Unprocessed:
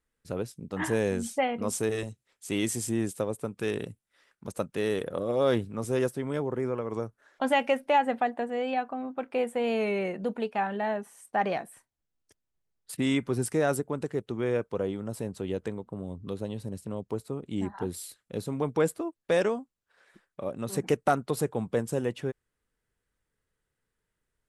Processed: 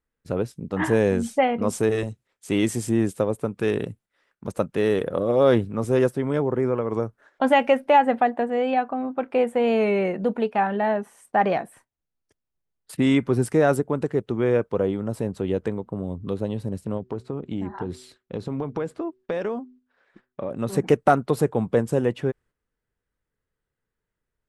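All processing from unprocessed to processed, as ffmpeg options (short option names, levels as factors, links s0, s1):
-filter_complex "[0:a]asettb=1/sr,asplit=3[s0][s1][s2];[s0]atrim=end=16.974[s3];[s1]atrim=start=16.97:end=20.51,asetpts=PTS-STARTPTS,afade=t=in:d=0.004:c=qsin,afade=t=out:st=3.536:d=0.004:c=qsin,lowpass=5700,acompressor=threshold=0.0282:ratio=6:attack=3.2:release=140:knee=1:detection=peak,bandreject=f=125.7:t=h:w=4,bandreject=f=251.4:t=h:w=4,bandreject=f=377.1:t=h:w=4[s4];[s2]atrim=start=20.506[s5];[s3][s4]acrossfade=d=0.004:c1=hsin:c2=qsin[s6];[s6][s5]acrossfade=d=0.004:c1=qsin:c2=hsin,agate=range=0.398:threshold=0.00141:ratio=16:detection=peak,highshelf=f=3300:g=-10,volume=2.37"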